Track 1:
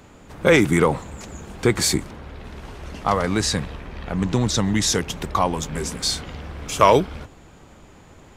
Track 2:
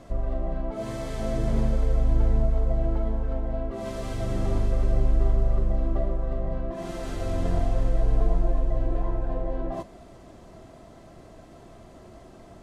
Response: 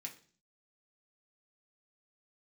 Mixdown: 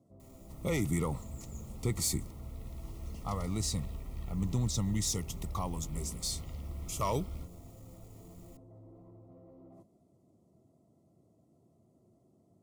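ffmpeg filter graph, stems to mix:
-filter_complex "[0:a]equalizer=frequency=450:width_type=o:width=2.9:gain=-13.5,acrusher=bits=8:mix=0:aa=0.000001,asoftclip=type=tanh:threshold=-12.5dB,adelay=200,volume=-3dB[link_01];[1:a]highpass=frequency=99:width=0.5412,highpass=frequency=99:width=1.3066,equalizer=frequency=1600:width=0.34:gain=-11,asoftclip=type=tanh:threshold=-35.5dB,volume=-13dB[link_02];[link_01][link_02]amix=inputs=2:normalize=0,asuperstop=centerf=1600:order=20:qfactor=3.8,equalizer=frequency=2700:width_type=o:width=2.6:gain=-13.5"

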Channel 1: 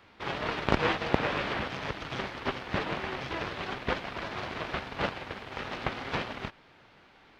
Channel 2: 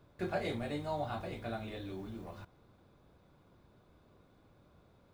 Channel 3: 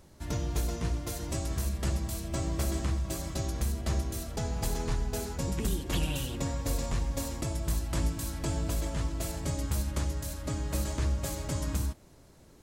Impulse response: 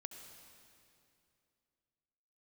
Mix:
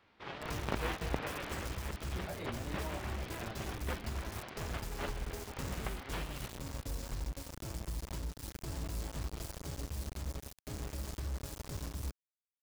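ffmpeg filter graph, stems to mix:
-filter_complex "[0:a]volume=-10.5dB[link_01];[1:a]adelay=1950,volume=-4.5dB[link_02];[2:a]equalizer=frequency=400:width_type=o:width=0.33:gain=7,equalizer=frequency=1000:width_type=o:width=0.33:gain=4,equalizer=frequency=5000:width_type=o:width=0.33:gain=6,acrusher=bits=4:mix=0:aa=0.000001,adelay=200,volume=-12dB[link_03];[link_02][link_03]amix=inputs=2:normalize=0,lowshelf=frequency=170:gain=8.5,alimiter=level_in=7.5dB:limit=-24dB:level=0:latency=1:release=357,volume=-7.5dB,volume=0dB[link_04];[link_01][link_04]amix=inputs=2:normalize=0"

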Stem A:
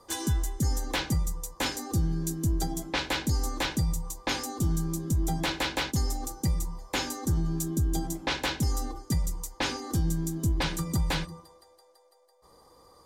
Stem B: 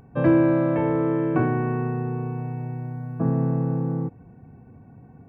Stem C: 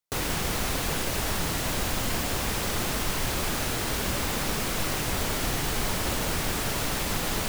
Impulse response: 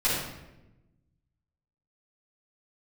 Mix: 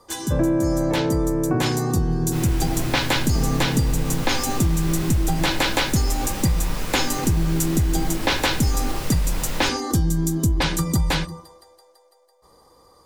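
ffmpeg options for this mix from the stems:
-filter_complex "[0:a]dynaudnorm=framelen=340:gausssize=13:maxgain=8dB,volume=3dB[link_01];[1:a]lowpass=frequency=1200:poles=1,adelay=150,volume=2dB[link_02];[2:a]adelay=2200,volume=-9dB,asplit=2[link_03][link_04];[link_04]volume=-7.5dB[link_05];[3:a]atrim=start_sample=2205[link_06];[link_05][link_06]afir=irnorm=-1:irlink=0[link_07];[link_01][link_02][link_03][link_07]amix=inputs=4:normalize=0,acompressor=threshold=-16dB:ratio=6"

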